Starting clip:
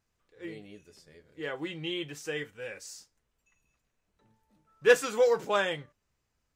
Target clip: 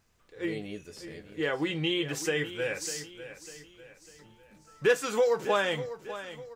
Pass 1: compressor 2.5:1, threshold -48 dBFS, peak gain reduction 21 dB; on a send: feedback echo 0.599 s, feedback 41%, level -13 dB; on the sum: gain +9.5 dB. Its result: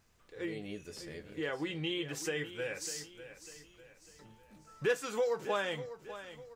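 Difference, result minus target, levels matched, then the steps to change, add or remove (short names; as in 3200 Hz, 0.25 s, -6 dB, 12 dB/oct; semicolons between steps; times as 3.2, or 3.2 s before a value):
compressor: peak gain reduction +7 dB
change: compressor 2.5:1, threshold -36.5 dBFS, peak gain reduction 14 dB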